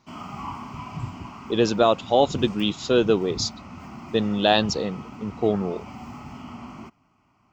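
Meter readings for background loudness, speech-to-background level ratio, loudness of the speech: −40.0 LKFS, 17.0 dB, −23.0 LKFS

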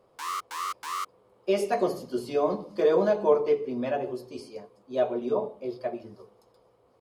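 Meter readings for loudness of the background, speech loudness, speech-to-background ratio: −34.0 LKFS, −27.5 LKFS, 6.5 dB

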